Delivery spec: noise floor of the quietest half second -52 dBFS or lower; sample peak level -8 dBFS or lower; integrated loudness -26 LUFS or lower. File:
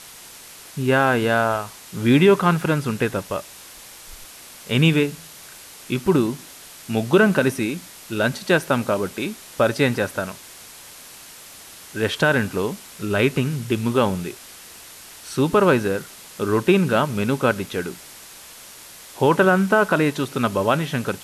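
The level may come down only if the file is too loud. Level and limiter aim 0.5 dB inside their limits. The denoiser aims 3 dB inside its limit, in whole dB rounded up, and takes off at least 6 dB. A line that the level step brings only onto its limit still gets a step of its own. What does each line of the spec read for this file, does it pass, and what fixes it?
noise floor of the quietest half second -42 dBFS: fail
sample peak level -5.5 dBFS: fail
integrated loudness -20.5 LUFS: fail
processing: noise reduction 7 dB, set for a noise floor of -42 dBFS; trim -6 dB

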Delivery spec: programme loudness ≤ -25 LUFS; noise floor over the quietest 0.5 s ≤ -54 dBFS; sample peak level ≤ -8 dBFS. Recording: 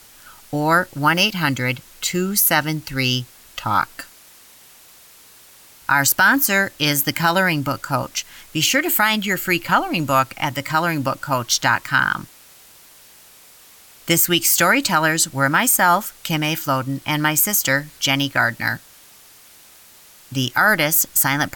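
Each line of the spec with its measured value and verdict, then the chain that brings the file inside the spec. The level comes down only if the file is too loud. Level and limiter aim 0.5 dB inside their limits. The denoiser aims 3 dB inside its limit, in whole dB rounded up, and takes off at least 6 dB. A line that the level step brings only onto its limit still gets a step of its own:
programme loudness -18.0 LUFS: fail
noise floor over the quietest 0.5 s -47 dBFS: fail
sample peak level -5.0 dBFS: fail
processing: trim -7.5 dB

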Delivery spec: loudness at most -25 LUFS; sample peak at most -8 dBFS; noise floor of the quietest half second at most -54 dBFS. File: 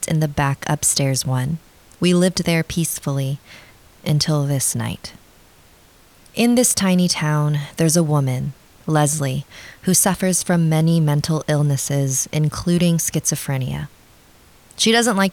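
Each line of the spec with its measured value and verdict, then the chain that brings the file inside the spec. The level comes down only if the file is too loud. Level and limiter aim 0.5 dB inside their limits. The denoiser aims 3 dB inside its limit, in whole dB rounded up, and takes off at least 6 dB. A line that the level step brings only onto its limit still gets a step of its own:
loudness -18.5 LUFS: fail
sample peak -4.5 dBFS: fail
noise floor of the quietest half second -50 dBFS: fail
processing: trim -7 dB

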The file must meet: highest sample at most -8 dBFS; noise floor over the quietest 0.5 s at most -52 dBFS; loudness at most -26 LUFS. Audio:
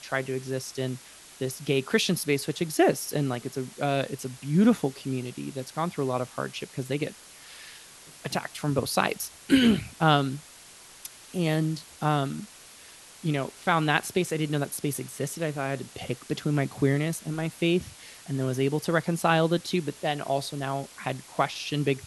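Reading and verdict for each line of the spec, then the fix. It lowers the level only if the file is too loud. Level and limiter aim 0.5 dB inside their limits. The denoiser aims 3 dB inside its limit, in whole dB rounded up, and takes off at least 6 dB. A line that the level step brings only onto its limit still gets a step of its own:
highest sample -6.0 dBFS: fail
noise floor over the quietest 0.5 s -50 dBFS: fail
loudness -28.0 LUFS: pass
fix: noise reduction 6 dB, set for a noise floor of -50 dBFS; peak limiter -8.5 dBFS

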